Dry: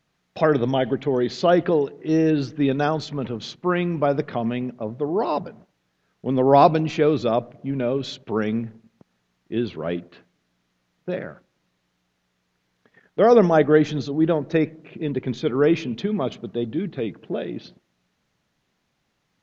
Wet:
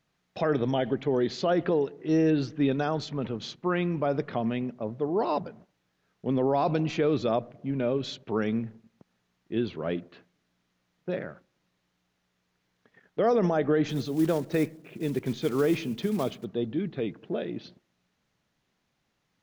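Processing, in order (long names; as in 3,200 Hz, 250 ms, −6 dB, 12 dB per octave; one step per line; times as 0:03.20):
0:13.89–0:16.45: one scale factor per block 5 bits
brickwall limiter −12 dBFS, peak gain reduction 10 dB
level −4 dB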